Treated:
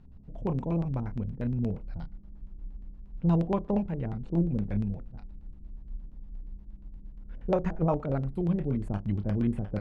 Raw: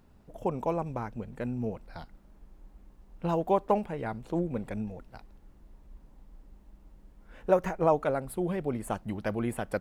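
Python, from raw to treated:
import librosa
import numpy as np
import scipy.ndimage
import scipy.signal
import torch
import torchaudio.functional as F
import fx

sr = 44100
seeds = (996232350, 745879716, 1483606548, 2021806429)

y = fx.bass_treble(x, sr, bass_db=14, treble_db=3)
y = fx.room_flutter(y, sr, wall_m=5.1, rt60_s=0.2)
y = fx.filter_lfo_lowpass(y, sr, shape='square', hz=8.5, low_hz=430.0, high_hz=3700.0, q=0.84)
y = y * 10.0 ** (-5.0 / 20.0)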